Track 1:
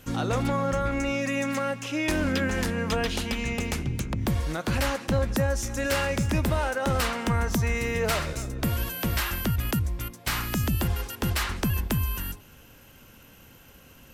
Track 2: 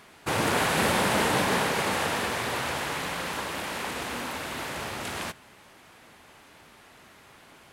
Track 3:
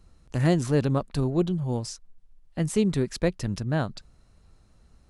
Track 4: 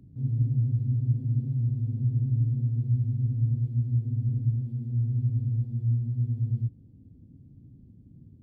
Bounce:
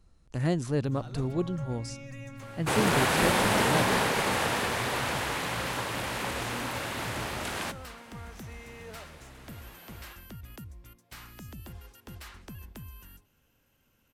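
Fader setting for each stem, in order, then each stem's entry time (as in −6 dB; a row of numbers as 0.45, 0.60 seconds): −18.5, −0.5, −5.5, −18.5 decibels; 0.85, 2.40, 0.00, 0.55 seconds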